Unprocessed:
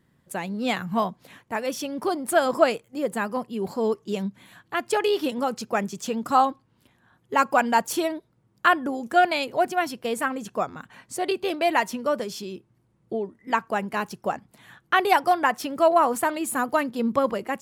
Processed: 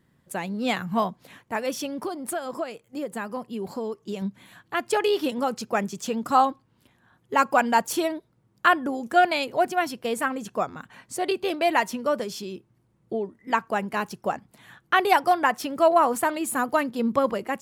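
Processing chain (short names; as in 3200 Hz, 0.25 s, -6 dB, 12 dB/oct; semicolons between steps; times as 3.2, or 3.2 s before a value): 1.87–4.22 compressor 6:1, threshold -28 dBFS, peak gain reduction 15.5 dB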